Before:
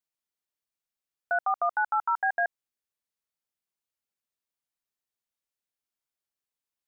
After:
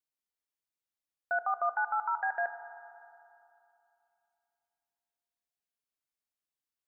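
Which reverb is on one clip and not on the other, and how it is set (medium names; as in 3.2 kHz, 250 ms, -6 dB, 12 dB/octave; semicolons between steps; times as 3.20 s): FDN reverb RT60 2.8 s, high-frequency decay 0.5×, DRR 10 dB; trim -4.5 dB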